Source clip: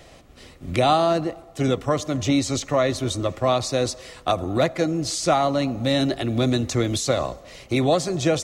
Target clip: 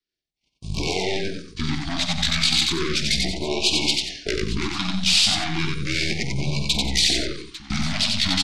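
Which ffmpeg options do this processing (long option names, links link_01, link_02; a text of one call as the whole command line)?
ffmpeg -i in.wav -filter_complex "[0:a]agate=range=-47dB:threshold=-39dB:ratio=16:detection=peak,aeval=exprs='0.501*(cos(1*acos(clip(val(0)/0.501,-1,1)))-cos(1*PI/2))+0.0708*(cos(2*acos(clip(val(0)/0.501,-1,1)))-cos(2*PI/2))+0.0562*(cos(3*acos(clip(val(0)/0.501,-1,1)))-cos(3*PI/2))+0.1*(cos(6*acos(clip(val(0)/0.501,-1,1)))-cos(6*PI/2))+0.112*(cos(8*acos(clip(val(0)/0.501,-1,1)))-cos(8*PI/2))':channel_layout=same,equalizer=frequency=7700:width_type=o:width=1.4:gain=8,alimiter=limit=-13dB:level=0:latency=1:release=22,acompressor=threshold=-30dB:ratio=2.5,flanger=delay=9.1:depth=4.3:regen=-13:speed=0.41:shape=triangular,adynamicequalizer=threshold=0.00316:dfrequency=170:dqfactor=1.4:tfrequency=170:tqfactor=1.4:attack=5:release=100:ratio=0.375:range=1.5:mode=cutabove:tftype=bell,asetrate=25476,aresample=44100,atempo=1.73107,crystalizer=i=4.5:c=0,asplit=2[link_01][link_02];[link_02]aecho=0:1:48|91|150|181|849:0.251|0.708|0.119|0.224|0.158[link_03];[link_01][link_03]amix=inputs=2:normalize=0,afftfilt=real='re*(1-between(b*sr/1024,400*pow(1600/400,0.5+0.5*sin(2*PI*0.34*pts/sr))/1.41,400*pow(1600/400,0.5+0.5*sin(2*PI*0.34*pts/sr))*1.41))':imag='im*(1-between(b*sr/1024,400*pow(1600/400,0.5+0.5*sin(2*PI*0.34*pts/sr))/1.41,400*pow(1600/400,0.5+0.5*sin(2*PI*0.34*pts/sr))*1.41))':win_size=1024:overlap=0.75,volume=7.5dB" out.wav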